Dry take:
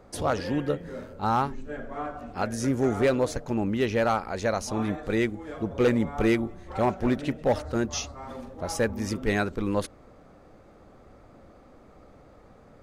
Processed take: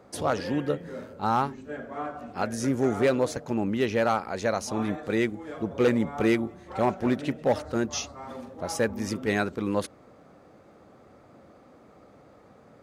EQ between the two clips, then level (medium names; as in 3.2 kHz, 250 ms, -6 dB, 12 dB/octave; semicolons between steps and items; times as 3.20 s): high-pass 110 Hz 12 dB/octave; 0.0 dB